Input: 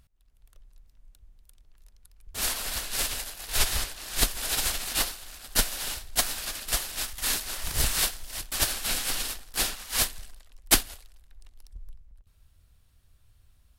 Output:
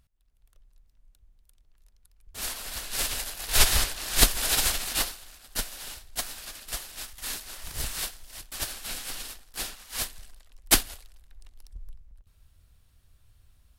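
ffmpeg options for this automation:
-af "volume=13dB,afade=t=in:st=2.7:d=0.94:silence=0.316228,afade=t=out:st=4.3:d=1.11:silence=0.251189,afade=t=in:st=9.95:d=0.9:silence=0.398107"

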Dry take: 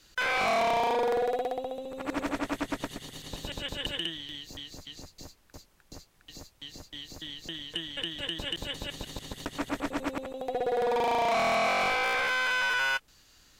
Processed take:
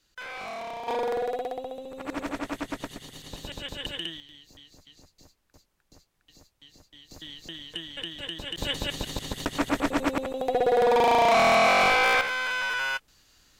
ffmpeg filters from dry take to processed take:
-af "asetnsamples=n=441:p=0,asendcmd='0.88 volume volume -1dB;4.2 volume volume -9.5dB;7.11 volume volume -1.5dB;8.58 volume volume 6.5dB;12.21 volume volume -1dB',volume=-10.5dB"

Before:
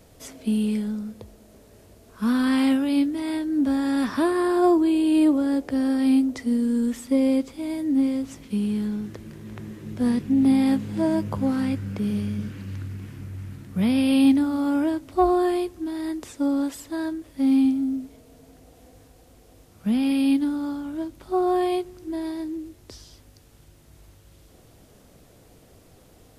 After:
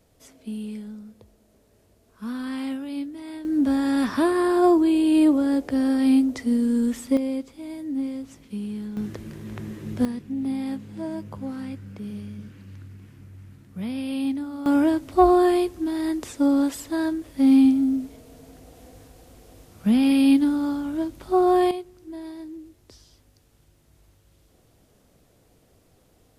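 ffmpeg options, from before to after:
-af "asetnsamples=n=441:p=0,asendcmd='3.45 volume volume 1dB;7.17 volume volume -6.5dB;8.97 volume volume 2.5dB;10.05 volume volume -9dB;14.66 volume volume 3.5dB;21.71 volume volume -7dB',volume=-9.5dB"

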